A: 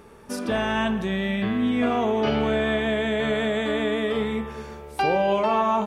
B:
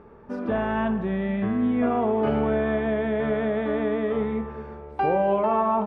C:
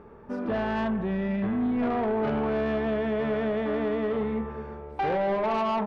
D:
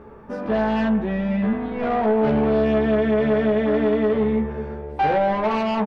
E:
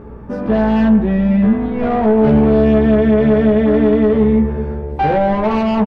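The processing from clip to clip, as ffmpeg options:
ffmpeg -i in.wav -af "lowpass=1400" out.wav
ffmpeg -i in.wav -af "asoftclip=type=tanh:threshold=-22dB" out.wav
ffmpeg -i in.wav -filter_complex "[0:a]asplit=2[link_01][link_02];[link_02]adelay=14,volume=-2.5dB[link_03];[link_01][link_03]amix=inputs=2:normalize=0,volume=4dB" out.wav
ffmpeg -i in.wav -filter_complex "[0:a]lowshelf=frequency=350:gain=10,aeval=exprs='val(0)+0.0126*(sin(2*PI*60*n/s)+sin(2*PI*2*60*n/s)/2+sin(2*PI*3*60*n/s)/3+sin(2*PI*4*60*n/s)/4+sin(2*PI*5*60*n/s)/5)':channel_layout=same,asplit=2[link_01][link_02];[link_02]adelay=110,highpass=300,lowpass=3400,asoftclip=type=hard:threshold=-13.5dB,volume=-19dB[link_03];[link_01][link_03]amix=inputs=2:normalize=0,volume=2dB" out.wav

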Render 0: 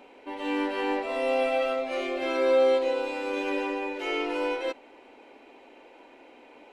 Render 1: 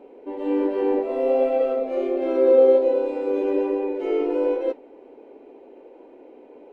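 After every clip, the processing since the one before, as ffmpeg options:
ffmpeg -i in.wav -af "equalizer=frequency=420:width=1.2:gain=11.5,flanger=delay=5.8:depth=7.1:regen=-76:speed=1.3:shape=triangular,tiltshelf=frequency=1100:gain=7.5,volume=-2dB" out.wav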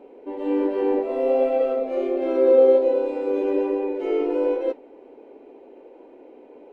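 ffmpeg -i in.wav -af anull out.wav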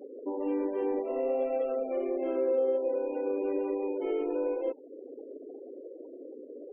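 ffmpeg -i in.wav -af "afftfilt=real='re*gte(hypot(re,im),0.0141)':imag='im*gte(hypot(re,im),0.0141)':win_size=1024:overlap=0.75,acompressor=threshold=-35dB:ratio=2.5,volume=2dB" out.wav

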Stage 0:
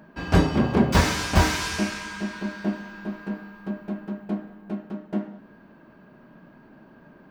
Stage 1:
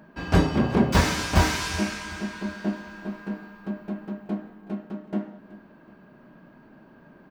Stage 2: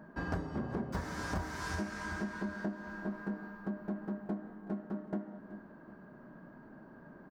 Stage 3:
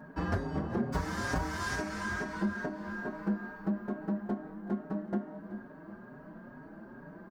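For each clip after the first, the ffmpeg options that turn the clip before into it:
ffmpeg -i in.wav -af "aecho=1:1:375|750|1125|1500:0.119|0.0523|0.023|0.0101,volume=-1dB" out.wav
ffmpeg -i in.wav -af "firequalizer=gain_entry='entry(1700,0);entry(2500,-13);entry(5100,-7)':delay=0.05:min_phase=1,acompressor=threshold=-31dB:ratio=16,volume=-2dB" out.wav
ffmpeg -i in.wav -filter_complex "[0:a]asplit=2[link_01][link_02];[link_02]adelay=5.1,afreqshift=2.3[link_03];[link_01][link_03]amix=inputs=2:normalize=1,volume=7.5dB" out.wav

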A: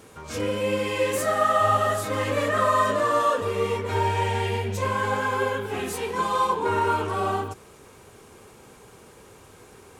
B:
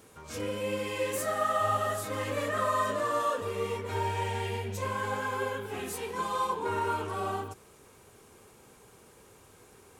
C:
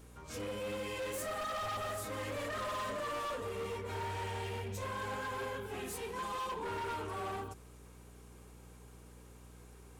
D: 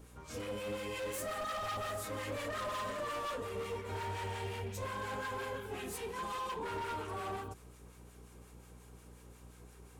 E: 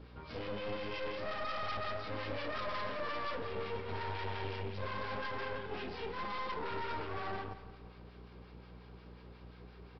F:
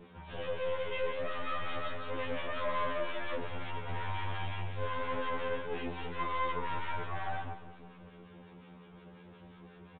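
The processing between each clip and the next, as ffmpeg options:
ffmpeg -i in.wav -af "highshelf=frequency=8600:gain=6.5,volume=-7.5dB" out.wav
ffmpeg -i in.wav -af "aeval=exprs='val(0)+0.00316*(sin(2*PI*60*n/s)+sin(2*PI*2*60*n/s)/2+sin(2*PI*3*60*n/s)/3+sin(2*PI*4*60*n/s)/4+sin(2*PI*5*60*n/s)/5)':channel_layout=same,asoftclip=type=hard:threshold=-31.5dB,volume=-4.5dB" out.wav
ffmpeg -i in.wav -filter_complex "[0:a]acrossover=split=1000[link_01][link_02];[link_01]aeval=exprs='val(0)*(1-0.5/2+0.5/2*cos(2*PI*5.6*n/s))':channel_layout=same[link_03];[link_02]aeval=exprs='val(0)*(1-0.5/2-0.5/2*cos(2*PI*5.6*n/s))':channel_layout=same[link_04];[link_03][link_04]amix=inputs=2:normalize=0,volume=2dB" out.wav
ffmpeg -i in.wav -filter_complex "[0:a]aresample=11025,aeval=exprs='clip(val(0),-1,0.00335)':channel_layout=same,aresample=44100,asplit=2[link_01][link_02];[link_02]adelay=172,lowpass=frequency=3900:poles=1,volume=-14dB,asplit=2[link_03][link_04];[link_04]adelay=172,lowpass=frequency=3900:poles=1,volume=0.49,asplit=2[link_05][link_06];[link_06]adelay=172,lowpass=frequency=3900:poles=1,volume=0.49,asplit=2[link_07][link_08];[link_08]adelay=172,lowpass=frequency=3900:poles=1,volume=0.49,asplit=2[link_09][link_10];[link_10]adelay=172,lowpass=frequency=3900:poles=1,volume=0.49[link_11];[link_01][link_03][link_05][link_07][link_09][link_11]amix=inputs=6:normalize=0,volume=3dB" out.wav
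ffmpeg -i in.wav -af "aresample=8000,aresample=44100,afftfilt=real='re*2*eq(mod(b,4),0)':imag='im*2*eq(mod(b,4),0)':win_size=2048:overlap=0.75,volume=4.5dB" out.wav

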